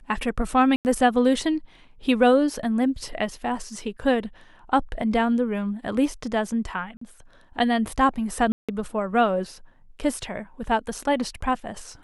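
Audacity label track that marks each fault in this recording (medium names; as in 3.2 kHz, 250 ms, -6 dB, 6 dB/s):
0.760000	0.850000	dropout 89 ms
6.970000	7.010000	dropout 44 ms
8.520000	8.690000	dropout 166 ms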